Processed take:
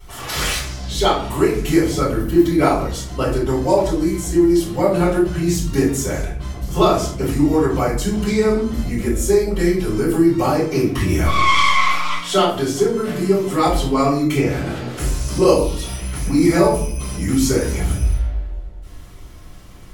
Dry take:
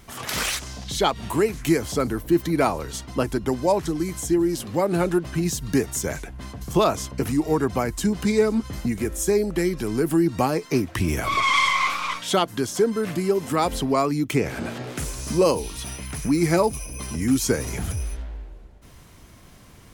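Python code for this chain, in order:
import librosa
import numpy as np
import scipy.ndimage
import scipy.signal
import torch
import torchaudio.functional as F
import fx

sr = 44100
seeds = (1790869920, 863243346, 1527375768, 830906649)

y = fx.room_shoebox(x, sr, seeds[0], volume_m3=58.0, walls='mixed', distance_m=3.6)
y = y * 10.0 ** (-10.0 / 20.0)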